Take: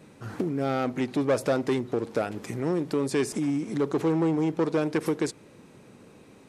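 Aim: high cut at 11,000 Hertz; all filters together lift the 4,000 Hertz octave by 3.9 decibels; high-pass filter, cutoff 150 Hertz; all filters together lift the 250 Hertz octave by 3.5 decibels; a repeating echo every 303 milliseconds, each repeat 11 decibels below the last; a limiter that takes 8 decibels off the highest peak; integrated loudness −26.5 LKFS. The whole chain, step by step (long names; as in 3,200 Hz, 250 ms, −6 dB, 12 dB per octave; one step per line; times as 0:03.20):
high-pass filter 150 Hz
low-pass filter 11,000 Hz
parametric band 250 Hz +5 dB
parametric band 4,000 Hz +5 dB
brickwall limiter −18.5 dBFS
repeating echo 303 ms, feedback 28%, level −11 dB
level +1.5 dB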